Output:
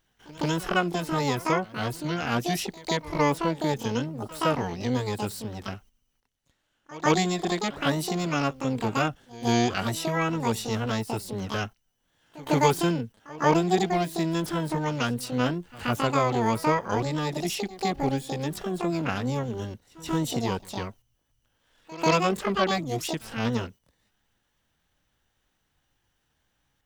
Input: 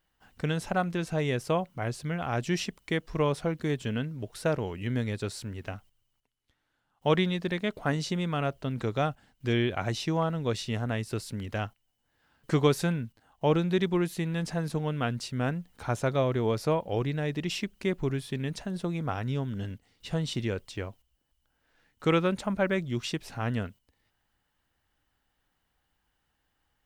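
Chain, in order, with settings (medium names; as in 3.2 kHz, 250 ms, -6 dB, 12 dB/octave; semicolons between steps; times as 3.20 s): pre-echo 145 ms -20 dB; harmony voices +12 st 0 dB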